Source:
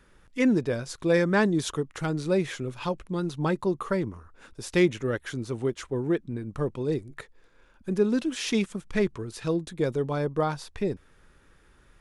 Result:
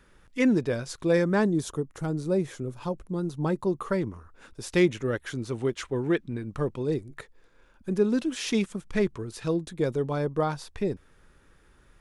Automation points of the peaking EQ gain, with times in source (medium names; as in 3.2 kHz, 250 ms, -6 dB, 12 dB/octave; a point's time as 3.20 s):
peaking EQ 2.6 kHz 2.3 oct
0.89 s +0.5 dB
1.73 s -11.5 dB
3.22 s -11.5 dB
3.98 s -0.5 dB
5.28 s -0.5 dB
6.13 s +7.5 dB
6.94 s -1.5 dB